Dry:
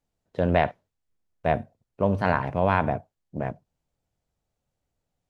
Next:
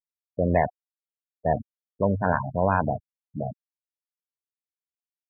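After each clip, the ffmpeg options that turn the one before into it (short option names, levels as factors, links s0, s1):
-af "afftfilt=real='re*gte(hypot(re,im),0.1)':imag='im*gte(hypot(re,im),0.1)':win_size=1024:overlap=0.75"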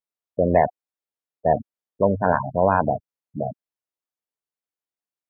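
-af "equalizer=f=540:w=0.37:g=8.5,volume=0.708"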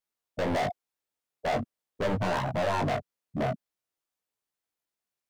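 -af "alimiter=limit=0.266:level=0:latency=1:release=28,volume=29.9,asoftclip=hard,volume=0.0335,flanger=delay=16.5:depth=7.1:speed=0.44,volume=2.24"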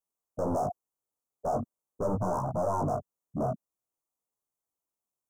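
-af "asuperstop=centerf=2800:order=12:qfactor=0.61,volume=0.891"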